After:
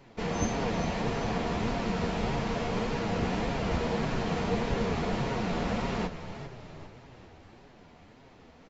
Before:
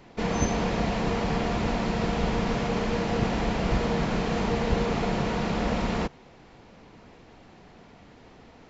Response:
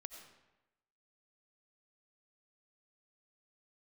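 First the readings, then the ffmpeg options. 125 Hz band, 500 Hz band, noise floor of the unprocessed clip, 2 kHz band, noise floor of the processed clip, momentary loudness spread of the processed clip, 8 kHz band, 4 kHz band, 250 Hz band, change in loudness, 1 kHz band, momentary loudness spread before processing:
−3.5 dB, −3.5 dB, −52 dBFS, −3.5 dB, −55 dBFS, 12 LU, can't be measured, −3.5 dB, −4.0 dB, −3.5 dB, −3.5 dB, 1 LU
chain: -filter_complex "[0:a]asplit=6[link_01][link_02][link_03][link_04][link_05][link_06];[link_02]adelay=399,afreqshift=-31,volume=-11dB[link_07];[link_03]adelay=798,afreqshift=-62,volume=-16.8dB[link_08];[link_04]adelay=1197,afreqshift=-93,volume=-22.7dB[link_09];[link_05]adelay=1596,afreqshift=-124,volume=-28.5dB[link_10];[link_06]adelay=1995,afreqshift=-155,volume=-34.4dB[link_11];[link_01][link_07][link_08][link_09][link_10][link_11]amix=inputs=6:normalize=0,flanger=delay=7.2:depth=5.3:regen=39:speed=1.7:shape=sinusoidal"

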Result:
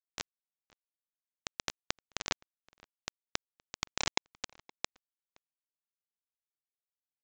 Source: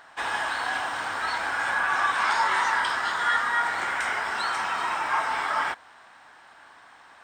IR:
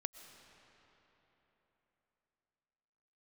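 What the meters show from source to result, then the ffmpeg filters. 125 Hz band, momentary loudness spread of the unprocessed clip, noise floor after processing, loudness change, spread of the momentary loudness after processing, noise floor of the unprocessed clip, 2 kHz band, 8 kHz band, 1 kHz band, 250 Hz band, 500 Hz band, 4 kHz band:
can't be measured, 6 LU, below −85 dBFS, −14.5 dB, 14 LU, −52 dBFS, −20.5 dB, −2.5 dB, −23.0 dB, −7.0 dB, −12.5 dB, −7.0 dB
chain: -filter_complex "[0:a]asplit=3[link_01][link_02][link_03];[link_01]bandpass=frequency=300:width_type=q:width=8,volume=0dB[link_04];[link_02]bandpass=frequency=870:width_type=q:width=8,volume=-6dB[link_05];[link_03]bandpass=frequency=2240:width_type=q:width=8,volume=-9dB[link_06];[link_04][link_05][link_06]amix=inputs=3:normalize=0,acompressor=threshold=-45dB:ratio=12,aemphasis=mode=production:type=75fm,crystalizer=i=3:c=0,acrusher=bits=5:mix=0:aa=0.000001,dynaudnorm=framelen=100:gausssize=5:maxgain=6.5dB,asplit=2[link_07][link_08];[link_08]adelay=519,volume=-24dB,highshelf=frequency=4000:gain=-11.7[link_09];[link_07][link_09]amix=inputs=2:normalize=0,aresample=16000,aresample=44100,volume=15dB"

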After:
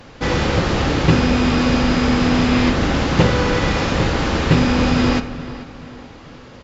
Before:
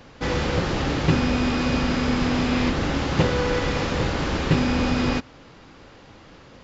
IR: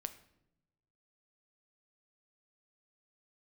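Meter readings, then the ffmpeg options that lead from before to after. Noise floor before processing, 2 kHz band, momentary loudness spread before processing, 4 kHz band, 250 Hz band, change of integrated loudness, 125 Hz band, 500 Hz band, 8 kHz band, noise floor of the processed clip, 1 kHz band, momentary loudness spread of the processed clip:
−48 dBFS, +5.5 dB, 3 LU, +5.5 dB, +6.0 dB, +6.0 dB, +6.0 dB, +5.0 dB, can't be measured, −40 dBFS, +6.0 dB, 9 LU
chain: -filter_complex "[0:a]asplit=2[link_01][link_02];[link_02]adelay=436,lowpass=frequency=3600:poles=1,volume=-15dB,asplit=2[link_03][link_04];[link_04]adelay=436,lowpass=frequency=3600:poles=1,volume=0.44,asplit=2[link_05][link_06];[link_06]adelay=436,lowpass=frequency=3600:poles=1,volume=0.44,asplit=2[link_07][link_08];[link_08]adelay=436,lowpass=frequency=3600:poles=1,volume=0.44[link_09];[link_01][link_03][link_05][link_07][link_09]amix=inputs=5:normalize=0,asplit=2[link_10][link_11];[1:a]atrim=start_sample=2205,asetrate=33957,aresample=44100[link_12];[link_11][link_12]afir=irnorm=-1:irlink=0,volume=11dB[link_13];[link_10][link_13]amix=inputs=2:normalize=0,volume=-6.5dB"

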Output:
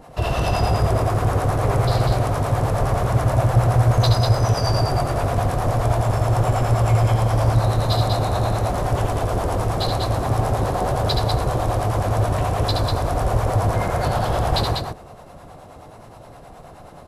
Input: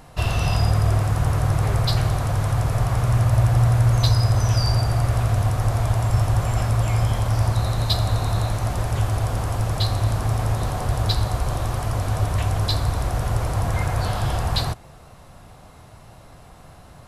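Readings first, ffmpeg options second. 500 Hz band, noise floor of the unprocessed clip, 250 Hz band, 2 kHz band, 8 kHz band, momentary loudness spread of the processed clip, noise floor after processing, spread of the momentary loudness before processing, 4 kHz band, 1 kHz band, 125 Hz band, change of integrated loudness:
+8.0 dB, −46 dBFS, +3.5 dB, +2.0 dB, −0.5 dB, 5 LU, −42 dBFS, 6 LU, +0.5 dB, +6.0 dB, 0.0 dB, +1.5 dB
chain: -filter_complex "[0:a]equalizer=frequency=500:width=0.53:gain=10,acrossover=split=520[link_01][link_02];[link_01]aeval=exprs='val(0)*(1-0.7/2+0.7/2*cos(2*PI*9.5*n/s))':channel_layout=same[link_03];[link_02]aeval=exprs='val(0)*(1-0.7/2-0.7/2*cos(2*PI*9.5*n/s))':channel_layout=same[link_04];[link_03][link_04]amix=inputs=2:normalize=0,aecho=1:1:72.89|195.3:0.562|0.631"

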